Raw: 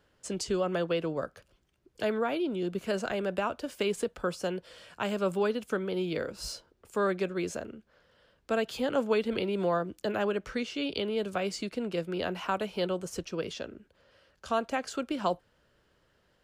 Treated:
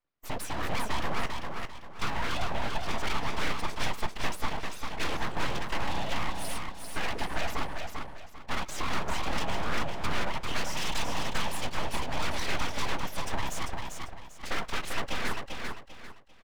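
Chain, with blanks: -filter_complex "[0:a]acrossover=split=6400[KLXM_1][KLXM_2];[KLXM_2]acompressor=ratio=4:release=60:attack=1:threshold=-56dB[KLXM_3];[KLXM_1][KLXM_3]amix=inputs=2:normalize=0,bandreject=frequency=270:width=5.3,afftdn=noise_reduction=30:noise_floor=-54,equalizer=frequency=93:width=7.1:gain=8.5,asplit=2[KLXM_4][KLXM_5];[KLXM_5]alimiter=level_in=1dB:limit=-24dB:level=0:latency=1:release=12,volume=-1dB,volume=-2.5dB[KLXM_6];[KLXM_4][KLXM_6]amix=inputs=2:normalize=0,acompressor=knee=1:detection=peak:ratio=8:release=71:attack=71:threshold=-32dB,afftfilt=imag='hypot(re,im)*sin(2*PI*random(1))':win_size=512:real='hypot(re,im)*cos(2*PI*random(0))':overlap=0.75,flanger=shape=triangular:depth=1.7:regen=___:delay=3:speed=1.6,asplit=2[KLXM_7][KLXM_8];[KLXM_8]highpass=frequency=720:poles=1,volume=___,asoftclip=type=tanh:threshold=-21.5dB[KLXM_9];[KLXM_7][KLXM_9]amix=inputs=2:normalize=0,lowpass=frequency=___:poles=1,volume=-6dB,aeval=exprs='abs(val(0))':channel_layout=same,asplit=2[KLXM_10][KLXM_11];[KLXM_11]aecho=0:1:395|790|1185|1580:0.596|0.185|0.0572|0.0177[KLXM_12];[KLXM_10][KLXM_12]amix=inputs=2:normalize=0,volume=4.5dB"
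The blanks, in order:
-11, 20dB, 2500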